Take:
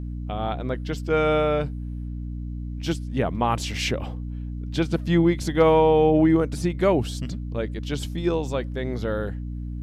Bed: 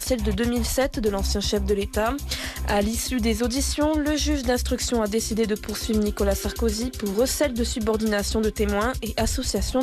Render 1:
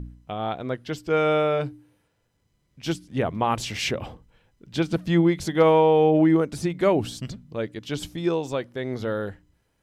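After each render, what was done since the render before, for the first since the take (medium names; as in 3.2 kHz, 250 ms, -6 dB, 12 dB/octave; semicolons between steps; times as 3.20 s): de-hum 60 Hz, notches 5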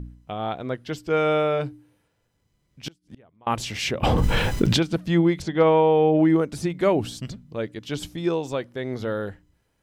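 2.88–3.47 s: inverted gate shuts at -28 dBFS, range -30 dB; 4.03–4.83 s: level flattener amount 100%; 5.42–6.19 s: distance through air 110 m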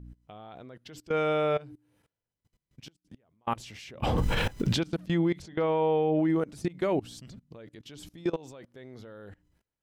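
level held to a coarse grid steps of 23 dB; peak limiter -18 dBFS, peak gain reduction 8.5 dB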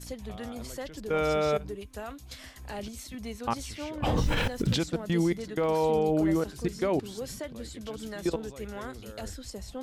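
add bed -16 dB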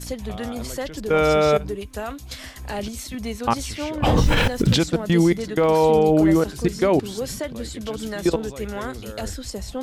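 trim +9 dB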